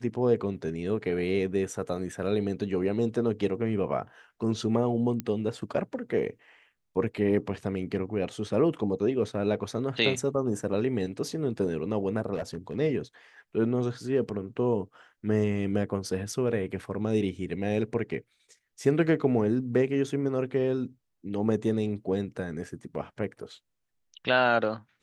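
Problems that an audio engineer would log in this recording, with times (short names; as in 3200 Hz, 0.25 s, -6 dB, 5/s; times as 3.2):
5.2 pop -17 dBFS
12.34–12.77 clipped -27 dBFS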